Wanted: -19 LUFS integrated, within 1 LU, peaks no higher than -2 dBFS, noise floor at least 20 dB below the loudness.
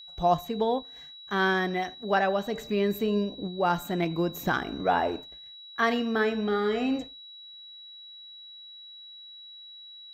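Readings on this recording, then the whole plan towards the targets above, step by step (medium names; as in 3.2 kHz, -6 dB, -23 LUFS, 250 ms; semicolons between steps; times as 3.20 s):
steady tone 3.9 kHz; tone level -44 dBFS; loudness -28.0 LUFS; peak level -11.5 dBFS; loudness target -19.0 LUFS
-> band-stop 3.9 kHz, Q 30; trim +9 dB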